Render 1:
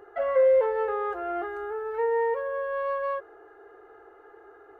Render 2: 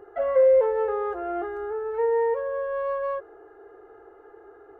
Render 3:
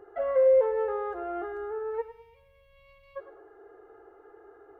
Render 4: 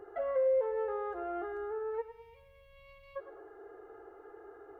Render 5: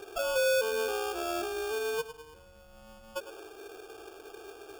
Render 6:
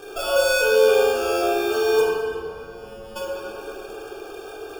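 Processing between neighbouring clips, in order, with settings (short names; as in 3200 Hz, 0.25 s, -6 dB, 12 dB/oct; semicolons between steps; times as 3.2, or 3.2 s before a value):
tilt shelf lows +5 dB, about 890 Hz
spectral gain 2.01–3.16, 210–2000 Hz -30 dB; thinning echo 0.103 s, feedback 34%, high-pass 360 Hz, level -12 dB; gain -4 dB
compressor 1.5:1, threshold -44 dBFS, peak gain reduction 9.5 dB; gain +1 dB
in parallel at +1 dB: limiter -30.5 dBFS, peak gain reduction 7.5 dB; on the sum: sample-rate reducer 2000 Hz, jitter 0%; gain -2 dB
reverb RT60 2.7 s, pre-delay 7 ms, DRR -5.5 dB; gain +4 dB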